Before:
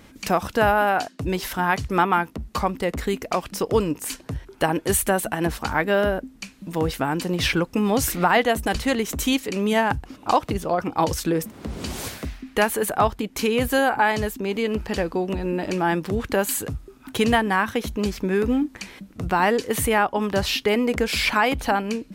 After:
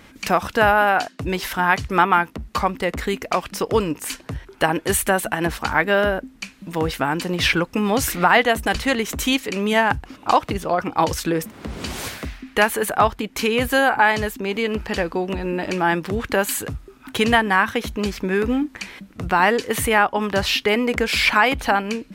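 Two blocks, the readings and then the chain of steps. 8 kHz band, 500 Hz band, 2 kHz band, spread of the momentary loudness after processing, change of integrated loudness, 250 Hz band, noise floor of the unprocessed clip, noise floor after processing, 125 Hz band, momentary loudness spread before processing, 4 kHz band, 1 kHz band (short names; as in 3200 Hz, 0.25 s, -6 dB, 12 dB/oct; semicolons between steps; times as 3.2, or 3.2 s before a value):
+1.0 dB, +1.5 dB, +5.5 dB, 12 LU, +2.5 dB, +0.5 dB, -50 dBFS, -49 dBFS, 0.0 dB, 10 LU, +4.0 dB, +3.0 dB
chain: bell 1900 Hz +5.5 dB 2.4 oct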